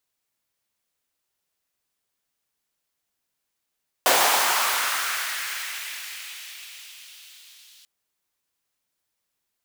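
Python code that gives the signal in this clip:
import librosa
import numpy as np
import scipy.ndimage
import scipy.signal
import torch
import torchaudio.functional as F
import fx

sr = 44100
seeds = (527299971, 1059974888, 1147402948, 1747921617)

y = fx.riser_noise(sr, seeds[0], length_s=3.79, colour='pink', kind='highpass', start_hz=600.0, end_hz=3500.0, q=1.8, swell_db=-33.5, law='linear')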